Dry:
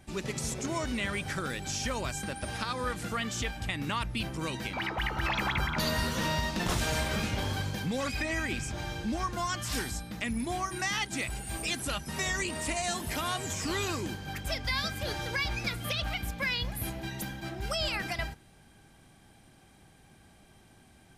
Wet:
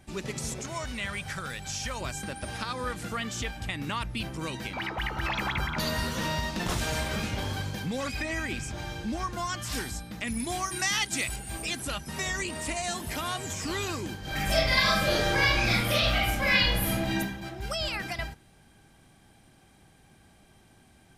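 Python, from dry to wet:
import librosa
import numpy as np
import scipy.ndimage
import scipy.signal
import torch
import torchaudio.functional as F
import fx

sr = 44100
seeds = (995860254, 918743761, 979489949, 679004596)

y = fx.peak_eq(x, sr, hz=320.0, db=-10.5, octaves=1.1, at=(0.62, 2.01))
y = fx.high_shelf(y, sr, hz=2700.0, db=8.5, at=(10.27, 11.36))
y = fx.reverb_throw(y, sr, start_s=14.2, length_s=2.96, rt60_s=0.89, drr_db=-8.5)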